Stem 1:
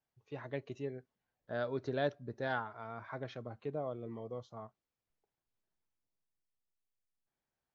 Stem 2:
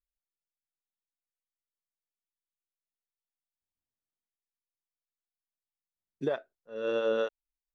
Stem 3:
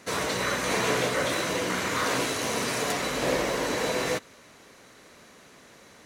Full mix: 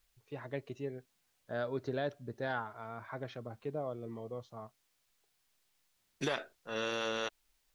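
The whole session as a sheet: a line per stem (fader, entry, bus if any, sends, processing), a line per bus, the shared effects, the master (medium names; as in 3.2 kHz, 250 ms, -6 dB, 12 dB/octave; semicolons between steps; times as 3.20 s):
+0.5 dB, 0.00 s, bus A, no send, none
+1.5 dB, 0.00 s, bus A, no send, peaking EQ 3.2 kHz +4.5 dB 2.7 oct; spectrum-flattening compressor 2:1
mute
bus A: 0.0 dB, peak limiter -23.5 dBFS, peak gain reduction 7 dB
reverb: none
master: none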